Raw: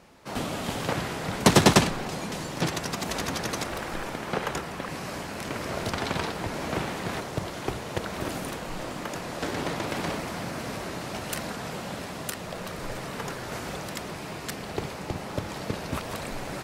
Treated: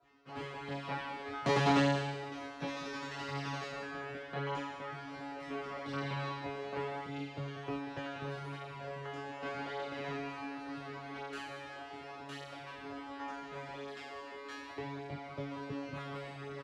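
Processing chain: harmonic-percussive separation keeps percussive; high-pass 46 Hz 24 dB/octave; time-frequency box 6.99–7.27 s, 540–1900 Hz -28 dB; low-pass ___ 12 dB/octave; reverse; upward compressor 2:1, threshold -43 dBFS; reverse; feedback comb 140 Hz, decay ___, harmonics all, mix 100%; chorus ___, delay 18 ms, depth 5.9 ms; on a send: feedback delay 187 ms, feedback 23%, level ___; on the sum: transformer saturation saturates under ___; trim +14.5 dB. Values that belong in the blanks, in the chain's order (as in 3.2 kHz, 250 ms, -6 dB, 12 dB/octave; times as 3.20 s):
3 kHz, 1 s, 0.38 Hz, -12 dB, 670 Hz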